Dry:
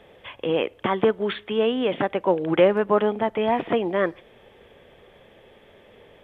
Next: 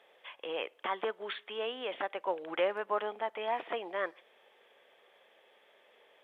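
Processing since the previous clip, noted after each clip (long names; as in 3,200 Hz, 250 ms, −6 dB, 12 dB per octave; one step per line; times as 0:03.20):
high-pass filter 650 Hz 12 dB per octave
level −8 dB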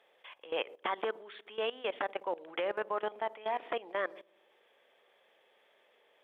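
delay with a low-pass on its return 60 ms, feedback 69%, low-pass 530 Hz, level −13.5 dB
output level in coarse steps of 18 dB
level +4 dB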